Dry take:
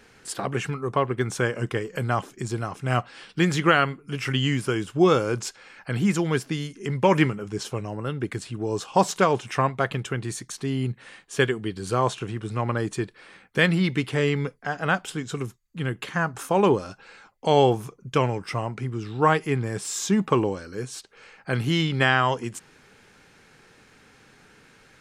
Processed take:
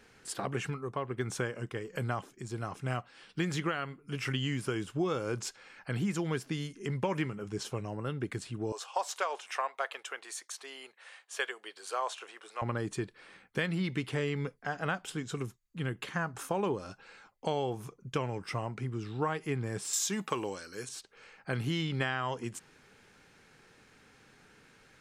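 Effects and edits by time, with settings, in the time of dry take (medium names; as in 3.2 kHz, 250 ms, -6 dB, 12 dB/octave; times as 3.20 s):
0.63–4.22 s: tremolo 1.4 Hz, depth 47%
8.72–12.62 s: high-pass 560 Hz 24 dB/octave
19.93–20.89 s: tilt EQ +3 dB/octave
whole clip: compression 6:1, threshold -22 dBFS; trim -6 dB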